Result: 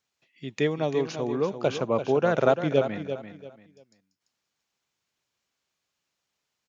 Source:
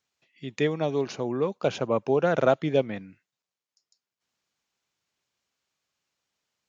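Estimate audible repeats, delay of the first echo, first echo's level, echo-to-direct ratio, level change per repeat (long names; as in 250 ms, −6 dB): 3, 341 ms, −9.5 dB, −9.0 dB, −11.5 dB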